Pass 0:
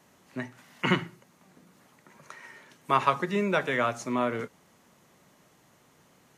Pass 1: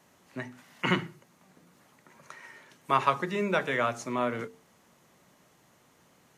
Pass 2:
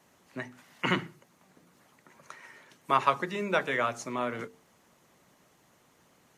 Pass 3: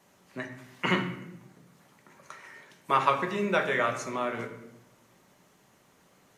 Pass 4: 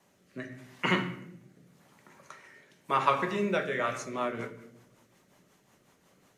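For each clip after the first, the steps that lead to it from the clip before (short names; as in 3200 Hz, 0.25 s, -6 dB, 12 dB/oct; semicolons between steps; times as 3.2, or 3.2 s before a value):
notches 50/100/150/200/250/300/350/400/450 Hz; gain -1 dB
harmonic-percussive split harmonic -5 dB; gain +1 dB
reverb RT60 0.85 s, pre-delay 5 ms, DRR 3.5 dB
rotary speaker horn 0.85 Hz, later 5.5 Hz, at 3.53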